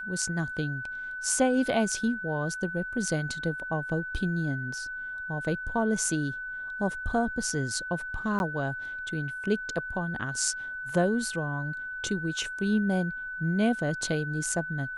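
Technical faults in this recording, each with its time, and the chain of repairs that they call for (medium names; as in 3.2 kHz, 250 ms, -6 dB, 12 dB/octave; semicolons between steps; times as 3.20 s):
whine 1.5 kHz -34 dBFS
8.39–8.40 s: dropout 11 ms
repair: band-stop 1.5 kHz, Q 30; interpolate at 8.39 s, 11 ms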